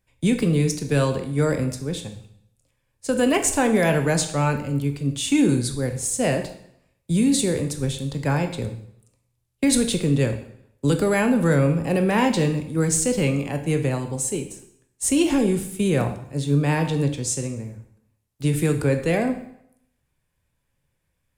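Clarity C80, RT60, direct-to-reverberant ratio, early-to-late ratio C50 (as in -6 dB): 12.5 dB, 0.70 s, 6.0 dB, 10.0 dB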